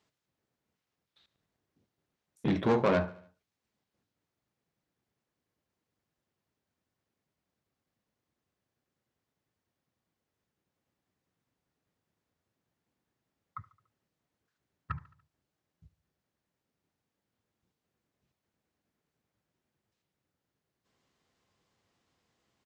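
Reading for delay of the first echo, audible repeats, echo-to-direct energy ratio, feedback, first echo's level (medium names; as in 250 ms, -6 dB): 72 ms, 3, -18.5 dB, 54%, -20.0 dB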